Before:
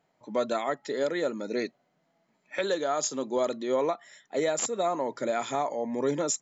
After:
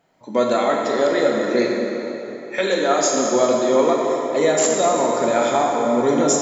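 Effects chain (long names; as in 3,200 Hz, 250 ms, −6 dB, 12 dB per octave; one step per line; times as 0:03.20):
dense smooth reverb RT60 3.7 s, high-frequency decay 0.7×, DRR −1.5 dB
level +7.5 dB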